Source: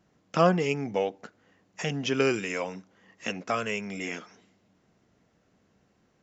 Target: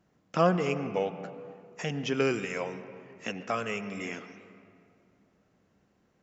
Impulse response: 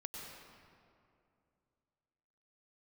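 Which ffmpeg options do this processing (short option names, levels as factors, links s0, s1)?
-filter_complex "[0:a]asplit=2[s0][s1];[s1]lowpass=3200[s2];[1:a]atrim=start_sample=2205[s3];[s2][s3]afir=irnorm=-1:irlink=0,volume=0.562[s4];[s0][s4]amix=inputs=2:normalize=0,volume=0.596"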